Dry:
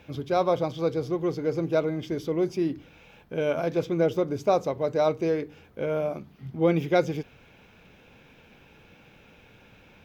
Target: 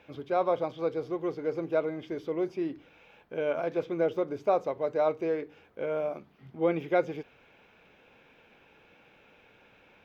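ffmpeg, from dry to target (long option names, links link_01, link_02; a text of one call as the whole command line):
ffmpeg -i in.wav -filter_complex "[0:a]bass=frequency=250:gain=-11,treble=frequency=4000:gain=-9,acrossover=split=3400[link_01][link_02];[link_02]acompressor=threshold=-57dB:ratio=4:attack=1:release=60[link_03];[link_01][link_03]amix=inputs=2:normalize=0,volume=-2.5dB" out.wav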